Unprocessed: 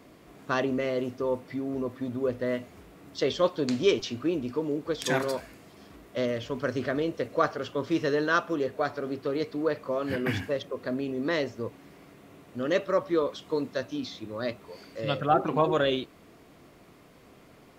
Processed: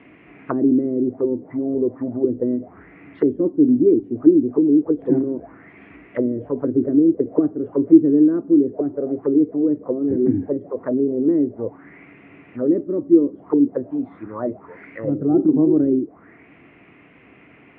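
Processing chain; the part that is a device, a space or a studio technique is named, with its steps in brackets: envelope filter bass rig (envelope low-pass 320–3000 Hz down, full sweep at -25.5 dBFS; speaker cabinet 68–2400 Hz, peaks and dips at 290 Hz +5 dB, 560 Hz -5 dB, 1100 Hz -3 dB, 2000 Hz +4 dB); gain +3.5 dB

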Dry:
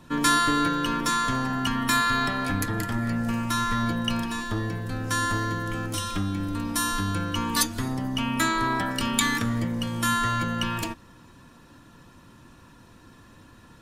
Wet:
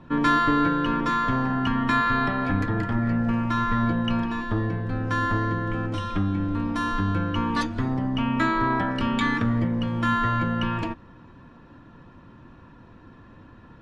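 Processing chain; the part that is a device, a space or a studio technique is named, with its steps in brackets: phone in a pocket (LPF 3200 Hz 12 dB/oct; high shelf 2300 Hz -9 dB); gain +3.5 dB

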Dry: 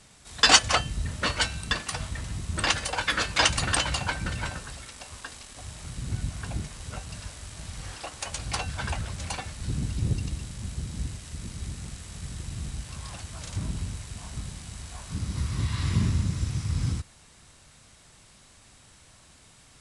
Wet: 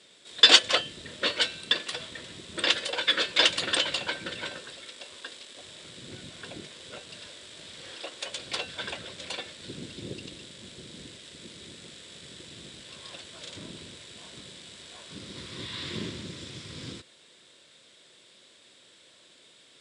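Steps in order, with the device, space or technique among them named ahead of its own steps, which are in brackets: full-range speaker at full volume (Doppler distortion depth 0.29 ms; speaker cabinet 300–8200 Hz, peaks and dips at 360 Hz +6 dB, 520 Hz +6 dB, 810 Hz -10 dB, 1200 Hz -6 dB, 3500 Hz +10 dB, 6200 Hz -7 dB); gain -1 dB

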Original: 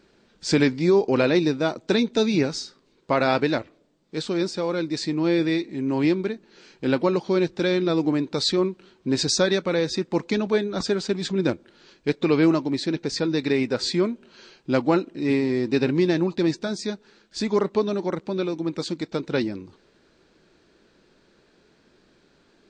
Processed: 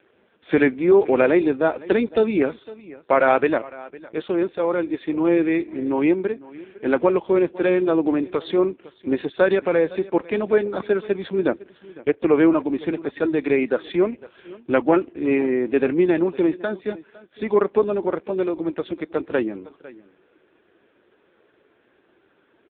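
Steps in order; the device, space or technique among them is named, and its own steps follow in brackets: 11.46–12.36 treble ducked by the level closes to 2300 Hz, closed at -21 dBFS; satellite phone (BPF 330–3200 Hz; echo 0.506 s -20 dB; gain +6 dB; AMR-NB 5.15 kbps 8000 Hz)

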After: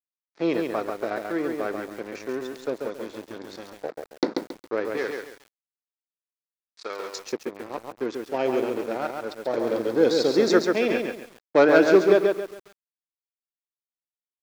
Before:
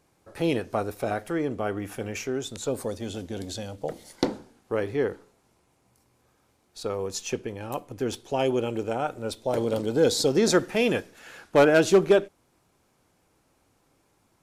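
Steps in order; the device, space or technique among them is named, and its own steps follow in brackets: blown loudspeaker (crossover distortion -36.5 dBFS; speaker cabinet 250–5300 Hz, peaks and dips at 330 Hz +3 dB, 810 Hz -3 dB, 3000 Hz -10 dB); 4.97–7.16 tilt +4 dB/oct; lo-fi delay 0.137 s, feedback 35%, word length 8-bit, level -4 dB; gain +2 dB

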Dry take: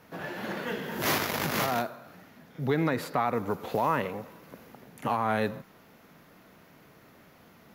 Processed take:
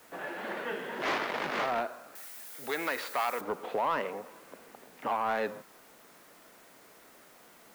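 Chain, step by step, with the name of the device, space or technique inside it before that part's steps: tape answering machine (BPF 350–3000 Hz; soft clip -21.5 dBFS, distortion -17 dB; wow and flutter; white noise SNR 25 dB); 2.15–3.41 tilt +4 dB/oct

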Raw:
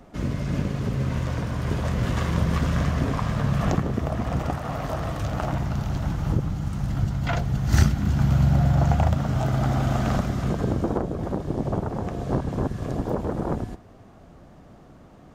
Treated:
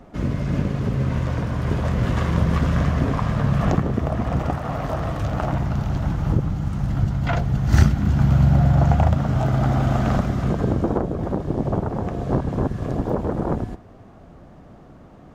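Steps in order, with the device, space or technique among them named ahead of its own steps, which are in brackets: behind a face mask (high shelf 3400 Hz -7.5 dB); gain +3.5 dB

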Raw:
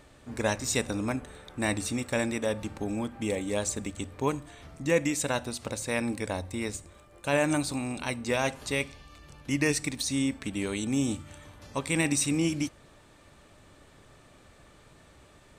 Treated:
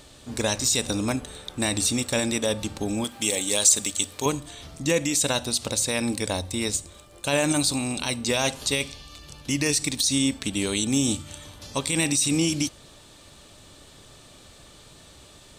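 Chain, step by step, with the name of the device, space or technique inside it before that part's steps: over-bright horn tweeter (resonant high shelf 2700 Hz +7.5 dB, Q 1.5; limiter -16.5 dBFS, peak gain reduction 9 dB); 3.04–4.26 tilt +2.5 dB/oct; gain +4.5 dB

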